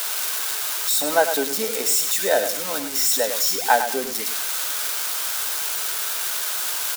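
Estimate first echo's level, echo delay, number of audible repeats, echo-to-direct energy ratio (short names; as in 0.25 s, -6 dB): -9.0 dB, 0.102 s, 2, -9.0 dB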